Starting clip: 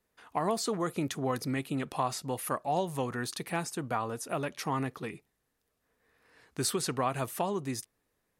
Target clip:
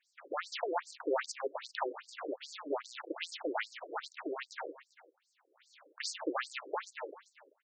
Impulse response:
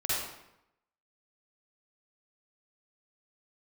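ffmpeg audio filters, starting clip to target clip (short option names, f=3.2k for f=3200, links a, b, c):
-filter_complex "[0:a]aemphasis=mode=production:type=50kf,acontrast=24,highshelf=f=2.5k:g=-7.5,asplit=2[a][b];[b]aecho=0:1:429:0.075[c];[a][c]amix=inputs=2:normalize=0,acrossover=split=150[d][e];[e]acompressor=threshold=-37dB:ratio=2.5[f];[d][f]amix=inputs=2:normalize=0,atempo=1.1,aeval=exprs='abs(val(0))':c=same,afftfilt=real='re*between(b*sr/1024,380*pow(6200/380,0.5+0.5*sin(2*PI*2.5*pts/sr))/1.41,380*pow(6200/380,0.5+0.5*sin(2*PI*2.5*pts/sr))*1.41)':imag='im*between(b*sr/1024,380*pow(6200/380,0.5+0.5*sin(2*PI*2.5*pts/sr))/1.41,380*pow(6200/380,0.5+0.5*sin(2*PI*2.5*pts/sr))*1.41)':win_size=1024:overlap=0.75,volume=10dB"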